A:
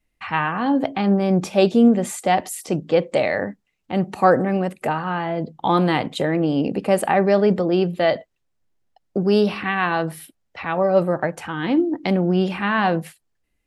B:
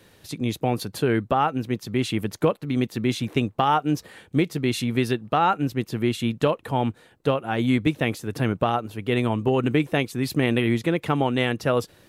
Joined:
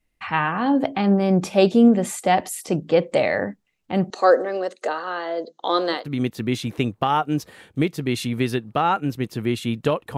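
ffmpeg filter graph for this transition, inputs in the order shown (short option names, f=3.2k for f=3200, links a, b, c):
-filter_complex "[0:a]asettb=1/sr,asplit=3[a][b][c];[a]atrim=end=4.104[d];[b]atrim=start=4.1:end=6.07,asetpts=PTS-STARTPTS,afade=t=in:d=0.004:c=qsin,afade=t=out:st=1.966:d=0.004:c=qsin,highpass=f=360:w=0.5412,highpass=f=360:w=1.3066,equalizer=f=520:t=q:w=4:g=3,equalizer=f=860:t=q:w=4:g=-8,equalizer=f=2.4k:t=q:w=4:g=-10,equalizer=f=4.1k:t=q:w=4:g=10,equalizer=f=6.4k:t=q:w=4:g=10,lowpass=f=7.7k:w=0.5412,lowpass=f=7.7k:w=1.3066[e];[c]atrim=start=6.066[f];[d][e]acrossfade=d=0.004:c1=hsin:c2=qsin[g];[g][f]acrossfade=d=0.004:c1=qsin:c2=hsin,apad=whole_dur=10.17,atrim=end=10.17,atrim=end=6.07,asetpts=PTS-STARTPTS[h];[1:a]atrim=start=2.46:end=6.74,asetpts=PTS-STARTPTS[i];[h][i]acrossfade=d=0.18:c1=tri:c2=tri"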